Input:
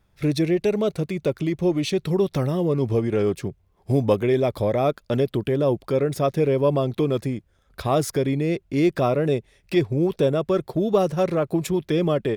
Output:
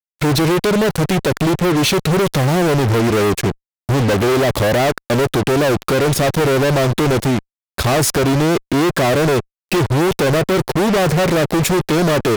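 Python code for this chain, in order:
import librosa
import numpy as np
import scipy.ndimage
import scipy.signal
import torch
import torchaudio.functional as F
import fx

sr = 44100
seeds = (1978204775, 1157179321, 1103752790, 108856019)

y = fx.fuzz(x, sr, gain_db=42.0, gate_db=-38.0)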